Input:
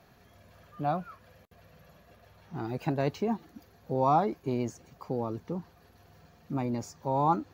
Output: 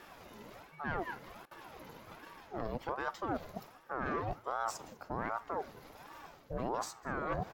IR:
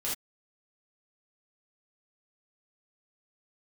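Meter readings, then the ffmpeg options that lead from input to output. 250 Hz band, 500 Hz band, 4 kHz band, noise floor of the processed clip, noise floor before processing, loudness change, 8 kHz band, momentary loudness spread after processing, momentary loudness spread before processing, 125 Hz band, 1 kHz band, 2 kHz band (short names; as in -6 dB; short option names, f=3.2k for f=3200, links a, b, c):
-10.5 dB, -7.5 dB, -1.5 dB, -59 dBFS, -60 dBFS, -8.0 dB, +1.5 dB, 15 LU, 13 LU, -11.0 dB, -7.5 dB, +6.0 dB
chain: -filter_complex "[0:a]highpass=f=77:w=0.5412,highpass=f=77:w=1.3066,areverse,acompressor=threshold=-42dB:ratio=4,areverse,aeval=exprs='(tanh(63.1*val(0)+0.55)-tanh(0.55))/63.1':c=same,asplit=2[a][b];[b]adelay=198.3,volume=-22dB,highshelf=f=4k:g=-4.46[c];[a][c]amix=inputs=2:normalize=0,asplit=2[d][e];[1:a]atrim=start_sample=2205[f];[e][f]afir=irnorm=-1:irlink=0,volume=-25.5dB[g];[d][g]amix=inputs=2:normalize=0,aeval=exprs='val(0)*sin(2*PI*680*n/s+680*0.55/1.3*sin(2*PI*1.3*n/s))':c=same,volume=11dB"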